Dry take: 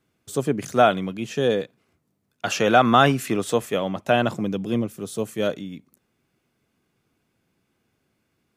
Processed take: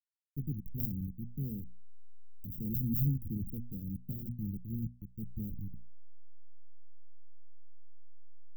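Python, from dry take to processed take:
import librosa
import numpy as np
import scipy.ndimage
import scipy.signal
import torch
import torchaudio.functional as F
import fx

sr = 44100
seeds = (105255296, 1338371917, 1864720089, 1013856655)

y = fx.delta_hold(x, sr, step_db=-23.0)
y = (np.mod(10.0 ** (6.0 / 20.0) * y + 1.0, 2.0) - 1.0) / 10.0 ** (6.0 / 20.0)
y = scipy.signal.sosfilt(scipy.signal.cheby2(4, 80, [960.0, 4800.0], 'bandstop', fs=sr, output='sos'), y)
y = fx.hum_notches(y, sr, base_hz=60, count=4)
y = y * librosa.db_to_amplitude(-5.0)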